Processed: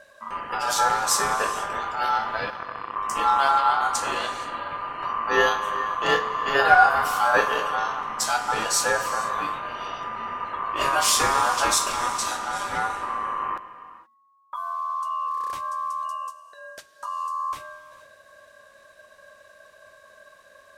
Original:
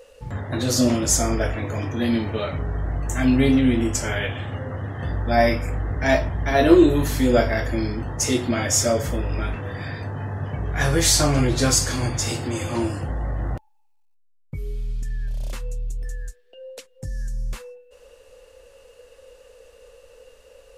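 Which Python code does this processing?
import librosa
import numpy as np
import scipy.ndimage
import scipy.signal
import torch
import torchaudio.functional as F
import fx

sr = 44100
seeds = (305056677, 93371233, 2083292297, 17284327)

y = fx.power_curve(x, sr, exponent=3.0, at=(2.5, 2.96))
y = y * np.sin(2.0 * np.pi * 1100.0 * np.arange(len(y)) / sr)
y = fx.rev_gated(y, sr, seeds[0], gate_ms=500, shape='flat', drr_db=11.0)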